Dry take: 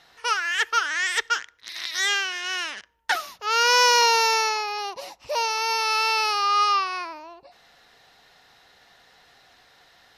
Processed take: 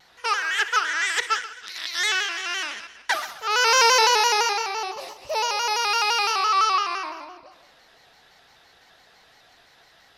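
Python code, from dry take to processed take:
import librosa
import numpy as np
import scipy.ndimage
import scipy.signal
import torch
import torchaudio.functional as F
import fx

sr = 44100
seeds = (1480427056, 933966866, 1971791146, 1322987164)

y = fx.reverse_delay(x, sr, ms=151, wet_db=-14)
y = fx.echo_heads(y, sr, ms=65, heads='first and second', feedback_pct=55, wet_db=-17)
y = fx.vibrato_shape(y, sr, shape='square', rate_hz=5.9, depth_cents=100.0)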